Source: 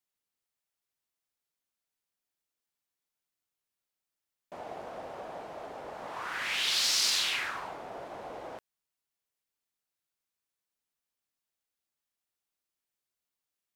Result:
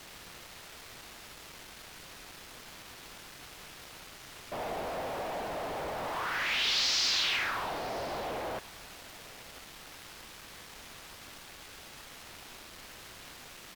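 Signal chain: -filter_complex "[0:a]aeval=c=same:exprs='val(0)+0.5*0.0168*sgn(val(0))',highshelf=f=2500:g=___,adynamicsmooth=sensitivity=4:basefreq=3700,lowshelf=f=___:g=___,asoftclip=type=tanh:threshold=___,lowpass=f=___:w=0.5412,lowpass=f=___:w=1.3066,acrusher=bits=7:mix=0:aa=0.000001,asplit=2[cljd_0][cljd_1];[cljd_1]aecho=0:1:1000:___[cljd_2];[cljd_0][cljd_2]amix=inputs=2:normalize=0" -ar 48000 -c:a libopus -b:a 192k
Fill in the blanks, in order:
2.5, 78, 7, -22.5dB, 6300, 6300, 0.0708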